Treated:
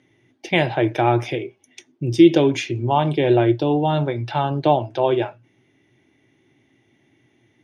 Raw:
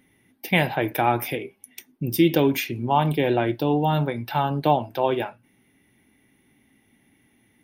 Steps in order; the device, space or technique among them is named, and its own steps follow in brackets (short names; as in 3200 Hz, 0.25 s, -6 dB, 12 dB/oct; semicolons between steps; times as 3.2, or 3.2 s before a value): car door speaker (speaker cabinet 88–7100 Hz, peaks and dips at 120 Hz +10 dB, 210 Hz -8 dB, 350 Hz +9 dB, 620 Hz +5 dB, 3300 Hz +3 dB, 6500 Hz +6 dB)